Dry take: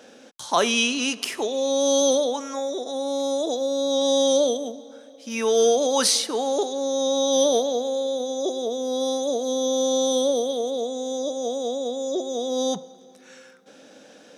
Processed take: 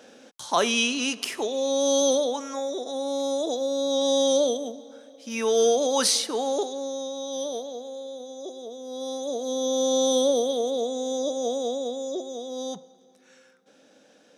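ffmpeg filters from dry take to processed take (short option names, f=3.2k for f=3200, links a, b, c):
-af "volume=9.5dB,afade=t=out:st=6.5:d=0.62:silence=0.334965,afade=t=in:st=8.83:d=1.25:silence=0.266073,afade=t=out:st=11.52:d=0.92:silence=0.375837"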